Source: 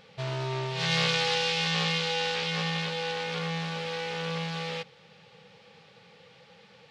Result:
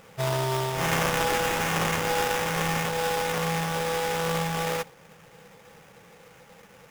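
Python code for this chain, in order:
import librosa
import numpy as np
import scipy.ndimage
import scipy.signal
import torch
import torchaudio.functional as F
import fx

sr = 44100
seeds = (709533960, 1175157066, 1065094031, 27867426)

p1 = fx.dynamic_eq(x, sr, hz=810.0, q=0.78, threshold_db=-43.0, ratio=4.0, max_db=6)
p2 = fx.rider(p1, sr, range_db=10, speed_s=0.5)
p3 = p1 + (p2 * librosa.db_to_amplitude(-0.5))
p4 = fx.sample_hold(p3, sr, seeds[0], rate_hz=4300.0, jitter_pct=20)
y = p4 * librosa.db_to_amplitude(-4.5)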